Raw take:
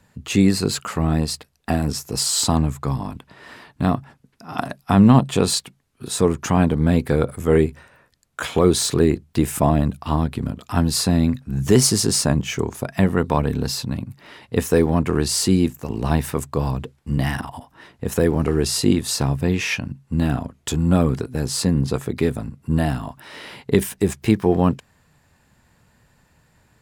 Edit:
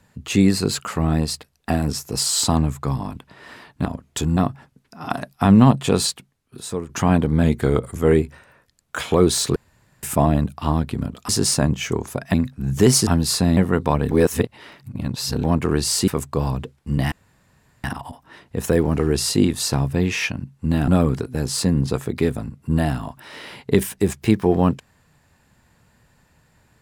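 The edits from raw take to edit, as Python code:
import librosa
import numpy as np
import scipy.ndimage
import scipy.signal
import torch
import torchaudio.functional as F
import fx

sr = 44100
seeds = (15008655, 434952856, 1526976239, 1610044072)

y = fx.edit(x, sr, fx.fade_out_to(start_s=5.46, length_s=0.91, floor_db=-12.5),
    fx.speed_span(start_s=6.91, length_s=0.51, speed=0.93),
    fx.room_tone_fill(start_s=9.0, length_s=0.47),
    fx.swap(start_s=10.73, length_s=0.5, other_s=11.96, other_length_s=1.05),
    fx.reverse_span(start_s=13.55, length_s=1.33),
    fx.cut(start_s=15.52, length_s=0.76),
    fx.insert_room_tone(at_s=17.32, length_s=0.72),
    fx.move(start_s=20.36, length_s=0.52, to_s=3.85), tone=tone)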